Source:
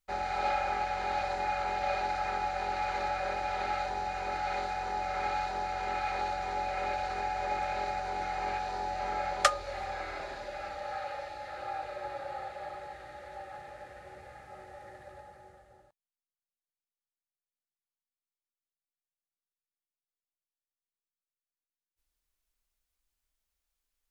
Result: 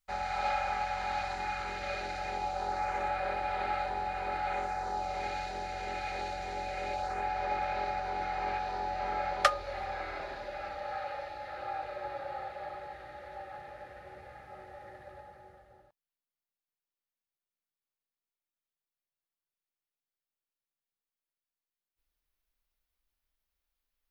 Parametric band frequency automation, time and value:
parametric band −9.5 dB 0.88 octaves
0:00.94 360 Hz
0:02.26 1,100 Hz
0:03.17 6,200 Hz
0:04.45 6,200 Hz
0:05.29 1,100 Hz
0:06.88 1,100 Hz
0:07.30 7,700 Hz

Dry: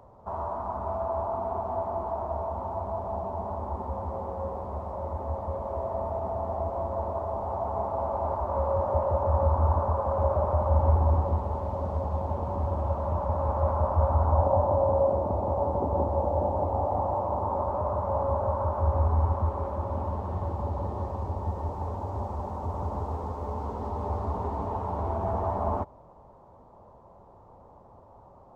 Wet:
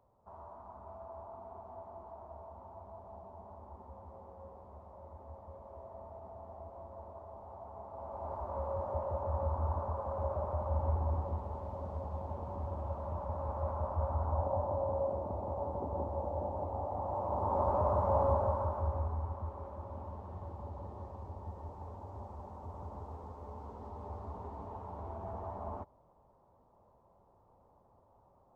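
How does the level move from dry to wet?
0:07.84 −18 dB
0:08.38 −10.5 dB
0:16.97 −10.5 dB
0:17.68 −1.5 dB
0:18.26 −1.5 dB
0:19.22 −13.5 dB

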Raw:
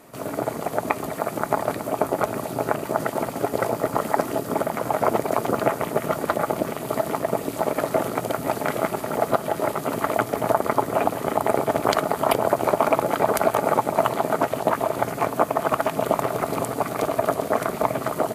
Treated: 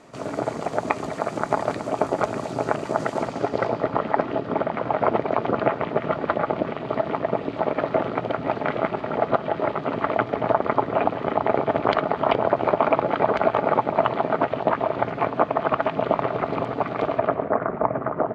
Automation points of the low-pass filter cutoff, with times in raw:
low-pass filter 24 dB per octave
0:03.16 7,200 Hz
0:04.01 3,500 Hz
0:17.13 3,500 Hz
0:17.56 1,700 Hz

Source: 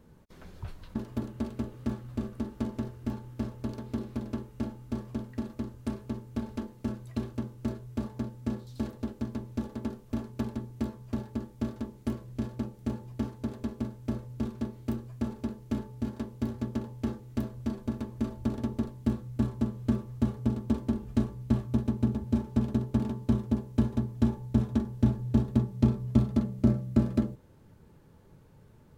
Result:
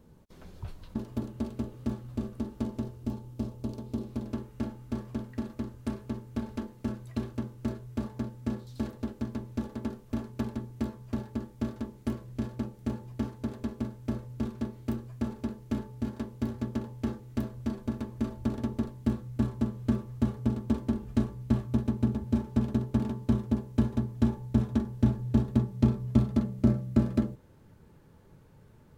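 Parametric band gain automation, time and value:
parametric band 1,700 Hz 1.2 octaves
0:02.64 −4 dB
0:03.20 −10.5 dB
0:03.95 −10.5 dB
0:04.46 +1.5 dB

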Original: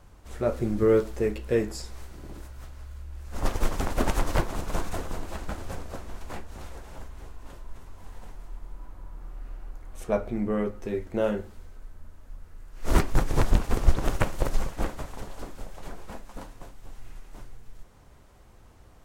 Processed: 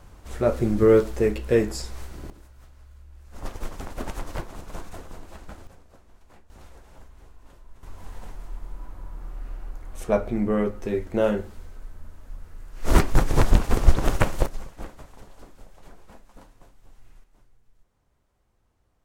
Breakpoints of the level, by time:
+4.5 dB
from 0:02.30 −7.5 dB
from 0:05.67 −16 dB
from 0:06.50 −7 dB
from 0:07.83 +4 dB
from 0:14.46 −8.5 dB
from 0:17.24 −16 dB

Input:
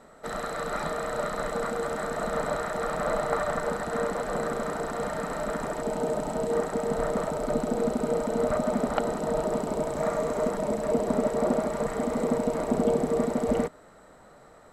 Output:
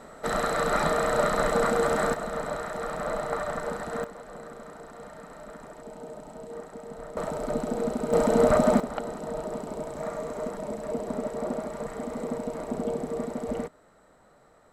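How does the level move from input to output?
+6 dB
from 0:02.14 −3 dB
from 0:04.04 −13 dB
from 0:07.17 −2 dB
from 0:08.13 +6 dB
from 0:08.80 −6 dB

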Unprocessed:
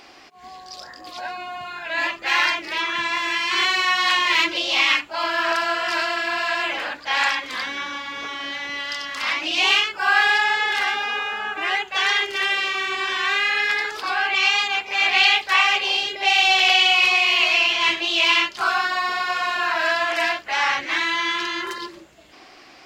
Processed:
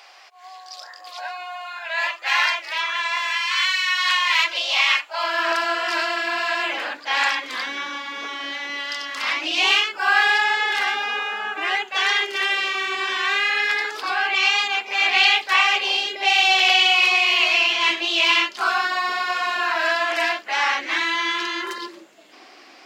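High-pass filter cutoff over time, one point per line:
high-pass filter 24 dB per octave
0:03.20 600 Hz
0:03.82 1,500 Hz
0:04.52 570 Hz
0:05.10 570 Hz
0:05.62 220 Hz

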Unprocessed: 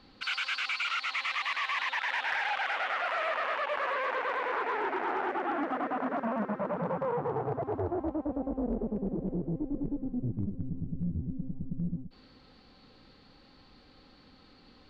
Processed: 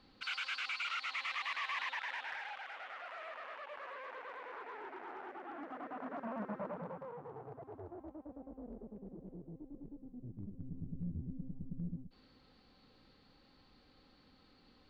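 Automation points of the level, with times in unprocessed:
0:01.84 −7 dB
0:02.66 −16 dB
0:05.45 −16 dB
0:06.59 −8 dB
0:07.13 −17 dB
0:10.14 −17 dB
0:10.84 −8 dB

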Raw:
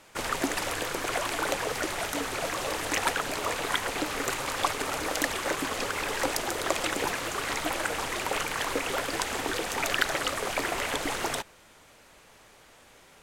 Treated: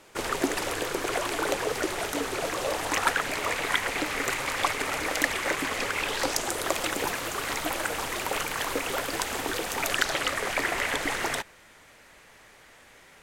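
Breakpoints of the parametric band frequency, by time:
parametric band +6.5 dB 0.61 octaves
0:02.53 390 Hz
0:03.24 2,100 Hz
0:05.92 2,100 Hz
0:06.73 15,000 Hz
0:09.84 15,000 Hz
0:10.28 1,900 Hz

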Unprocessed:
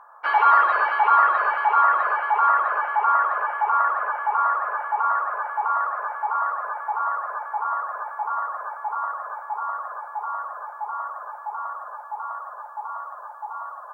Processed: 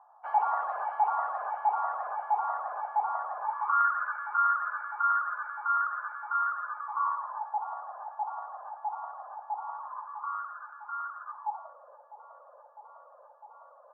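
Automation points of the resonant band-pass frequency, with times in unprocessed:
resonant band-pass, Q 7.3
0:03.40 760 Hz
0:03.80 1,400 Hz
0:06.64 1,400 Hz
0:07.58 770 Hz
0:09.60 770 Hz
0:10.50 1,400 Hz
0:11.24 1,400 Hz
0:11.74 530 Hz

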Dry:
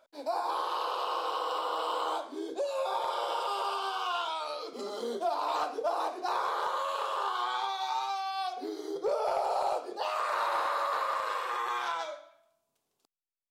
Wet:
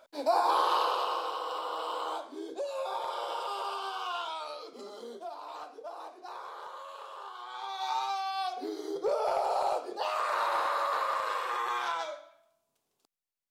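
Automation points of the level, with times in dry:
0:00.74 +6 dB
0:01.36 −3 dB
0:04.42 −3 dB
0:05.43 −12 dB
0:07.45 −12 dB
0:07.88 +0.5 dB

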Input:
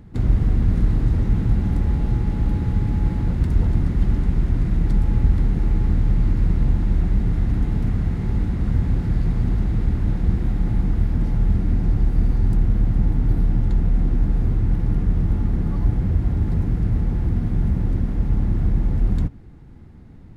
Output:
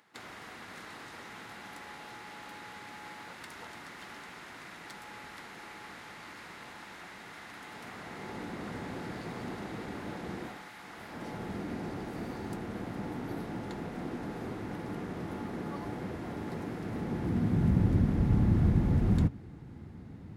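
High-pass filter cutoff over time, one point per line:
0:07.60 1,100 Hz
0:08.48 460 Hz
0:10.43 460 Hz
0:10.72 1,400 Hz
0:11.38 400 Hz
0:16.80 400 Hz
0:17.87 92 Hz

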